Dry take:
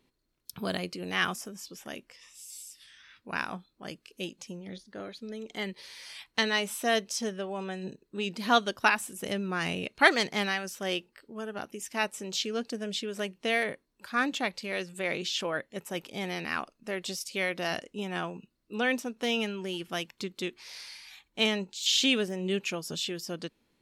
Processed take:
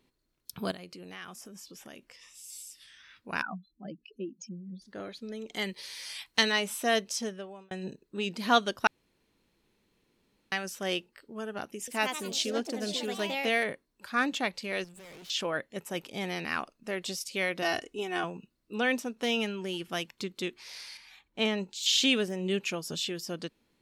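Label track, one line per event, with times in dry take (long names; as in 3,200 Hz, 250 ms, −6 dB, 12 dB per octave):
0.710000	2.440000	downward compressor 3 to 1, threshold −45 dBFS
3.420000	4.820000	expanding power law on the bin magnitudes exponent 2.9
5.540000	6.520000	high-shelf EQ 3,300 Hz +7.5 dB
7.130000	7.710000	fade out
8.870000	10.520000	fill with room tone
11.760000	13.680000	delay with pitch and tempo change per echo 115 ms, each echo +3 semitones, echoes 3, each echo −6 dB
14.840000	15.300000	tube saturation drive 48 dB, bias 0.7
17.620000	18.240000	comb filter 2.7 ms, depth 73%
20.970000	21.580000	high-shelf EQ 3,100 Hz −9 dB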